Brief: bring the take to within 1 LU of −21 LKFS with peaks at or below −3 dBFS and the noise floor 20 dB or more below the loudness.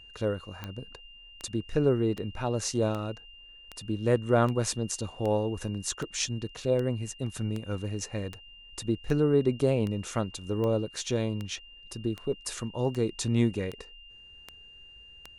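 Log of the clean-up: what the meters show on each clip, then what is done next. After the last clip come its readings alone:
number of clicks 20; interfering tone 2,800 Hz; level of the tone −49 dBFS; integrated loudness −30.0 LKFS; sample peak −11.0 dBFS; target loudness −21.0 LKFS
→ click removal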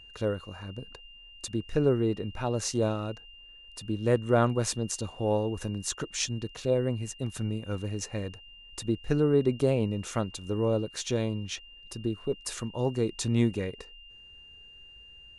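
number of clicks 0; interfering tone 2,800 Hz; level of the tone −49 dBFS
→ notch filter 2,800 Hz, Q 30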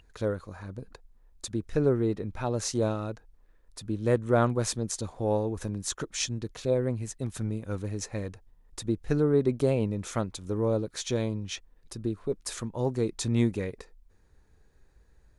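interfering tone none found; integrated loudness −30.0 LKFS; sample peak −11.0 dBFS; target loudness −21.0 LKFS
→ level +9 dB
brickwall limiter −3 dBFS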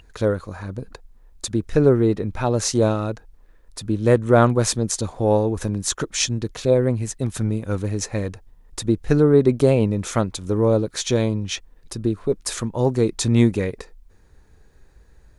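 integrated loudness −21.0 LKFS; sample peak −3.0 dBFS; background noise floor −52 dBFS

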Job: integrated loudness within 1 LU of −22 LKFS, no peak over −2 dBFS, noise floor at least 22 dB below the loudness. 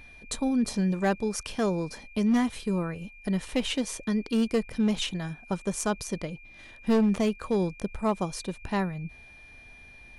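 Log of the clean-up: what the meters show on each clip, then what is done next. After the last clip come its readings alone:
share of clipped samples 0.8%; peaks flattened at −18.5 dBFS; interfering tone 2,400 Hz; level of the tone −49 dBFS; integrated loudness −29.0 LKFS; sample peak −18.5 dBFS; target loudness −22.0 LKFS
→ clipped peaks rebuilt −18.5 dBFS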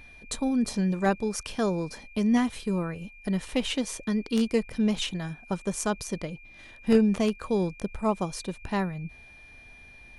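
share of clipped samples 0.0%; interfering tone 2,400 Hz; level of the tone −49 dBFS
→ notch filter 2,400 Hz, Q 30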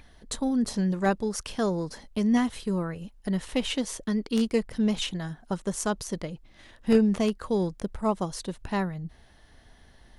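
interfering tone none found; integrated loudness −28.5 LKFS; sample peak −9.5 dBFS; target loudness −22.0 LKFS
→ level +6.5 dB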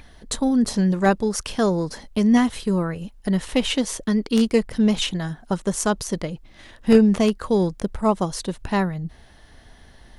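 integrated loudness −22.0 LKFS; sample peak −3.0 dBFS; background noise floor −49 dBFS

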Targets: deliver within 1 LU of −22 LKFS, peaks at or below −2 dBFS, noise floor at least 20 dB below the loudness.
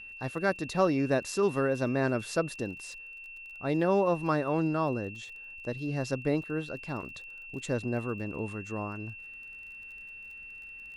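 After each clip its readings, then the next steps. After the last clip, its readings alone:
crackle rate 30 per second; interfering tone 2,700 Hz; level of the tone −43 dBFS; integrated loudness −31.0 LKFS; sample peak −13.0 dBFS; target loudness −22.0 LKFS
→ click removal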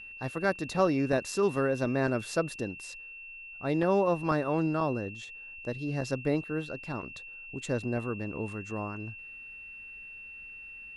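crackle rate 0 per second; interfering tone 2,700 Hz; level of the tone −43 dBFS
→ notch filter 2,700 Hz, Q 30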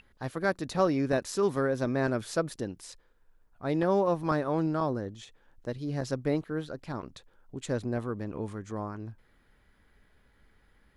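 interfering tone none found; integrated loudness −31.0 LKFS; sample peak −13.0 dBFS; target loudness −22.0 LKFS
→ level +9 dB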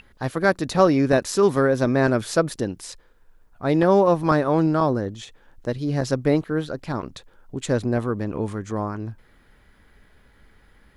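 integrated loudness −22.0 LKFS; sample peak −4.0 dBFS; background noise floor −56 dBFS

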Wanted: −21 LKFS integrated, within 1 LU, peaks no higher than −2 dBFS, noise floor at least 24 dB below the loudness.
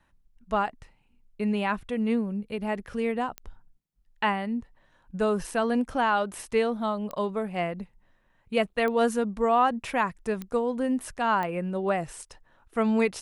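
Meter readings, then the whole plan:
number of clicks 5; integrated loudness −27.5 LKFS; sample peak −11.5 dBFS; target loudness −21.0 LKFS
→ click removal
level +6.5 dB

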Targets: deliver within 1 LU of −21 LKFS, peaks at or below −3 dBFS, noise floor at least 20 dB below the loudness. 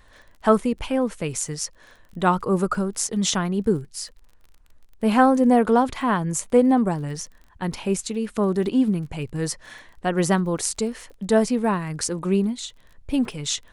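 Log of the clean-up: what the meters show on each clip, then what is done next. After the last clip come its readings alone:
crackle rate 27 per second; integrated loudness −23.0 LKFS; sample peak −4.0 dBFS; target loudness −21.0 LKFS
→ click removal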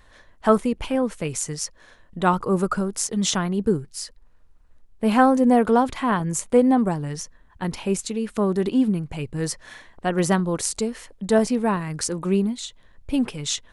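crackle rate 0 per second; integrated loudness −23.0 LKFS; sample peak −4.0 dBFS; target loudness −21.0 LKFS
→ level +2 dB
brickwall limiter −3 dBFS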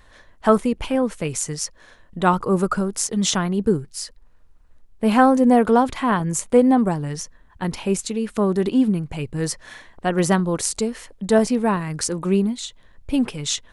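integrated loudness −21.0 LKFS; sample peak −3.0 dBFS; background noise floor −51 dBFS

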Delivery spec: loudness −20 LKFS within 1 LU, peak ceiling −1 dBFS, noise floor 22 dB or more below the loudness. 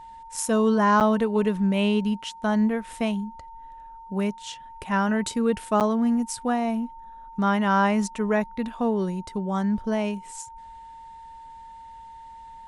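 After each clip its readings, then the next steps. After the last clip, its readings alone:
number of dropouts 2; longest dropout 8.3 ms; interfering tone 910 Hz; level of the tone −41 dBFS; integrated loudness −24.5 LKFS; sample peak −9.5 dBFS; target loudness −20.0 LKFS
→ repair the gap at 0:01.00/0:05.80, 8.3 ms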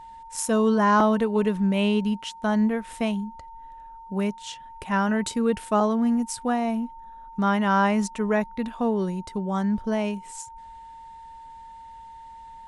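number of dropouts 0; interfering tone 910 Hz; level of the tone −41 dBFS
→ notch filter 910 Hz, Q 30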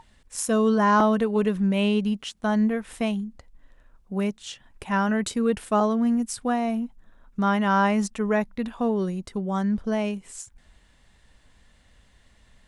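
interfering tone none found; integrated loudness −24.5 LKFS; sample peak −9.5 dBFS; target loudness −20.0 LKFS
→ level +4.5 dB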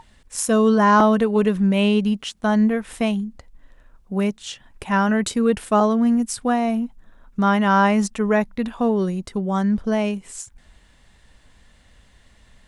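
integrated loudness −20.0 LKFS; sample peak −5.0 dBFS; background noise floor −55 dBFS

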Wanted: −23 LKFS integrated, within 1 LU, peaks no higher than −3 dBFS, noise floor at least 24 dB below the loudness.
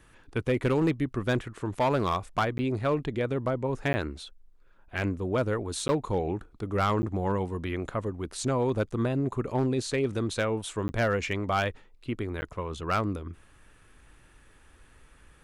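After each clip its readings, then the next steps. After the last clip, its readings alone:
share of clipped samples 0.6%; peaks flattened at −19.0 dBFS; number of dropouts 6; longest dropout 10 ms; integrated loudness −29.5 LKFS; sample peak −19.0 dBFS; target loudness −23.0 LKFS
→ clipped peaks rebuilt −19 dBFS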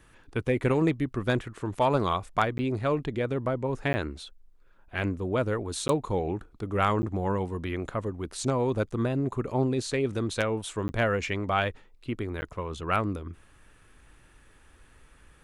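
share of clipped samples 0.0%; number of dropouts 6; longest dropout 10 ms
→ repair the gap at 0:02.58/0:03.93/0:05.88/0:07.02/0:10.88/0:12.41, 10 ms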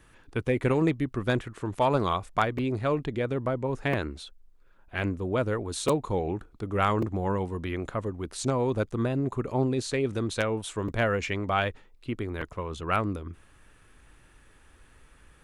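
number of dropouts 0; integrated loudness −29.0 LKFS; sample peak −10.0 dBFS; target loudness −23.0 LKFS
→ level +6 dB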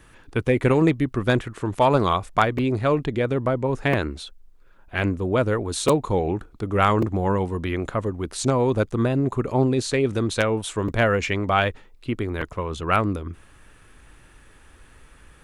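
integrated loudness −23.0 LKFS; sample peak −4.0 dBFS; background noise floor −51 dBFS

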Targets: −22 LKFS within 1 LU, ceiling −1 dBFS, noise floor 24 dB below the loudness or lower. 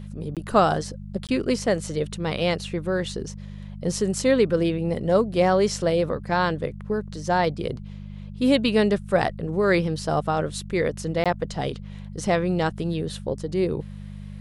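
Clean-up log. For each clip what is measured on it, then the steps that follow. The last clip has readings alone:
number of dropouts 3; longest dropout 17 ms; mains hum 50 Hz; hum harmonics up to 200 Hz; level of the hum −35 dBFS; integrated loudness −24.5 LKFS; sample peak −5.5 dBFS; target loudness −22.0 LKFS
→ repair the gap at 0:00.35/0:01.27/0:11.24, 17 ms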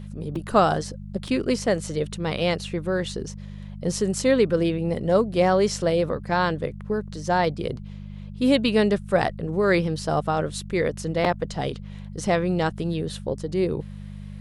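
number of dropouts 0; mains hum 50 Hz; hum harmonics up to 200 Hz; level of the hum −35 dBFS
→ hum removal 50 Hz, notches 4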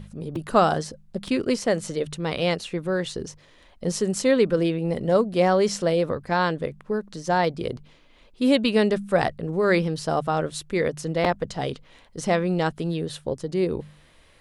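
mains hum none found; integrated loudness −24.5 LKFS; sample peak −5.5 dBFS; target loudness −22.0 LKFS
→ level +2.5 dB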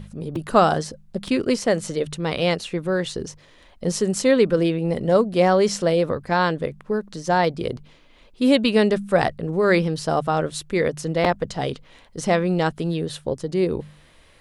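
integrated loudness −22.0 LKFS; sample peak −3.0 dBFS; background noise floor −52 dBFS

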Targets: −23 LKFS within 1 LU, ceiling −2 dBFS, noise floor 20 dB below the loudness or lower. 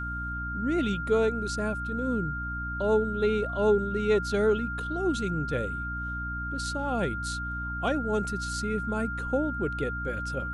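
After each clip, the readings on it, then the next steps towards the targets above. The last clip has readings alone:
mains hum 60 Hz; hum harmonics up to 300 Hz; level of the hum −34 dBFS; interfering tone 1,400 Hz; level of the tone −33 dBFS; integrated loudness −29.0 LKFS; sample peak −13.0 dBFS; target loudness −23.0 LKFS
→ mains-hum notches 60/120/180/240/300 Hz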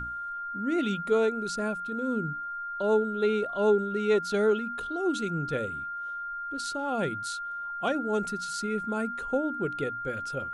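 mains hum none found; interfering tone 1,400 Hz; level of the tone −33 dBFS
→ notch filter 1,400 Hz, Q 30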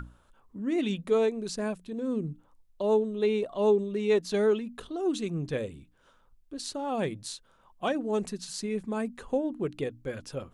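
interfering tone none found; integrated loudness −30.0 LKFS; sample peak −14.0 dBFS; target loudness −23.0 LKFS
→ level +7 dB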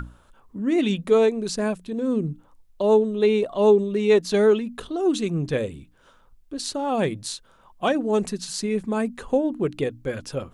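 integrated loudness −23.0 LKFS; sample peak −7.0 dBFS; background noise floor −56 dBFS

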